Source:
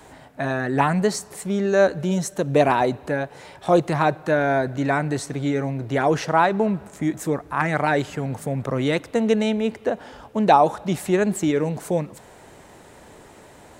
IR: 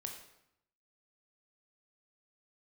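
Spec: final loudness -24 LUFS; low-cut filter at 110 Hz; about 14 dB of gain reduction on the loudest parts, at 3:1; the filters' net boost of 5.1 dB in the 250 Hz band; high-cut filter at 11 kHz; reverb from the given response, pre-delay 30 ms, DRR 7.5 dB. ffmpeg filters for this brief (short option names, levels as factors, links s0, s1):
-filter_complex "[0:a]highpass=110,lowpass=11000,equalizer=f=250:t=o:g=7,acompressor=threshold=0.0355:ratio=3,asplit=2[s0][s1];[1:a]atrim=start_sample=2205,adelay=30[s2];[s1][s2]afir=irnorm=-1:irlink=0,volume=0.562[s3];[s0][s3]amix=inputs=2:normalize=0,volume=1.88"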